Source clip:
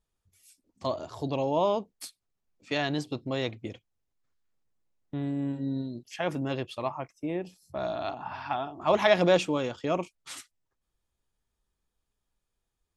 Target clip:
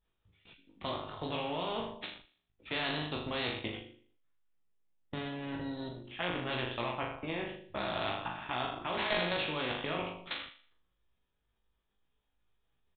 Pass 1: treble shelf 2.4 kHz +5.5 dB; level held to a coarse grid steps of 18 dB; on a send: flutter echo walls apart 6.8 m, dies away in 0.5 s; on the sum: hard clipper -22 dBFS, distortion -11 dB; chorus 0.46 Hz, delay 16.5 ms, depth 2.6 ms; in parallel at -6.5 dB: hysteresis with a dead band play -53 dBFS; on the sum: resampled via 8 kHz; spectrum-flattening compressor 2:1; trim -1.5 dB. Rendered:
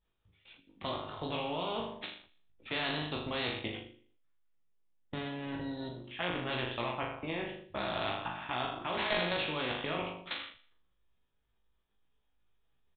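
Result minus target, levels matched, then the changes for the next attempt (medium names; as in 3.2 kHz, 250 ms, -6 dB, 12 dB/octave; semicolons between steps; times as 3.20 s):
hysteresis with a dead band: distortion -7 dB
change: hysteresis with a dead band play -45.5 dBFS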